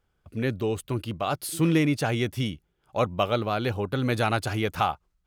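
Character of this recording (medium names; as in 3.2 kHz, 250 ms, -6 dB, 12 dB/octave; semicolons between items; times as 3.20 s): noise floor -73 dBFS; spectral tilt -5.0 dB/octave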